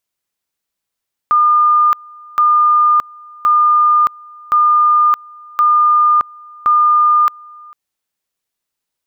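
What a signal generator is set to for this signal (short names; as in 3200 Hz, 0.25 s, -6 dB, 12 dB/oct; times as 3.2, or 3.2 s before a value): two-level tone 1210 Hz -7.5 dBFS, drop 26.5 dB, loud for 0.62 s, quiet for 0.45 s, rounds 6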